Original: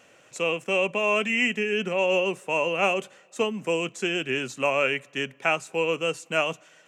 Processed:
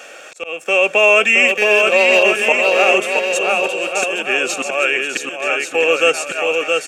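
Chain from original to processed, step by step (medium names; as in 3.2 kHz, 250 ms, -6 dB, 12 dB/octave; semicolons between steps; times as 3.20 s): high-pass 510 Hz 12 dB/octave; slow attack 599 ms; in parallel at +2 dB: compression, threshold -38 dBFS, peak gain reduction 17 dB; 1.48–2.23 s: on the sum: power-law waveshaper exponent 1.4; comb of notches 1 kHz; on a send: bouncing-ball echo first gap 670 ms, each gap 0.7×, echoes 5; on the sum: loudness maximiser +14.5 dB; trim -1 dB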